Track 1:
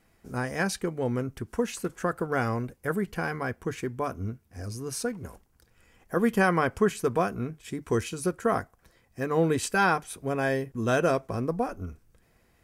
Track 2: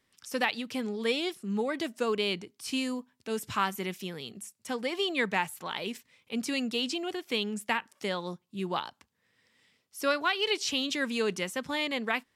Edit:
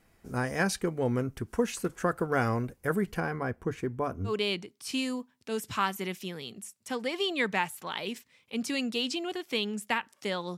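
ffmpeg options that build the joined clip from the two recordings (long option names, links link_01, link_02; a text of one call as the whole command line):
ffmpeg -i cue0.wav -i cue1.wav -filter_complex "[0:a]asettb=1/sr,asplit=3[link_01][link_02][link_03];[link_01]atrim=end=3.204[link_04];[link_02]atrim=start=3.2:end=4.34,asetpts=PTS-STARTPTS,afade=type=in:duration=0.004:curve=qsin,afade=type=out:start_time=1.136:duration=0.004:curve=qsin,highshelf=frequency=2000:gain=-9[link_05];[link_03]atrim=start=4.336[link_06];[link_04][link_05]acrossfade=duration=0.004:curve1=hsin:curve2=qsin[link_07];[link_07][link_06]acrossfade=duration=0.004:curve1=qsin:curve2=hsin,apad=whole_dur=10.57,atrim=end=10.57,atrim=end=4.34,asetpts=PTS-STARTPTS[link_08];[1:a]atrim=start=2.03:end=8.36,asetpts=PTS-STARTPTS[link_09];[link_08][link_09]acrossfade=duration=0.1:curve1=tri:curve2=tri" out.wav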